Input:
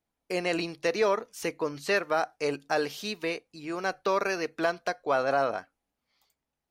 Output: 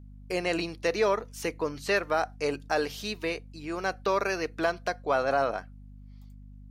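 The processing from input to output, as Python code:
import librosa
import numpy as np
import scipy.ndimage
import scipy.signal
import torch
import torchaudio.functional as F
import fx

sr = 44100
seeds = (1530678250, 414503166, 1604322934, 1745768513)

y = fx.add_hum(x, sr, base_hz=50, snr_db=17)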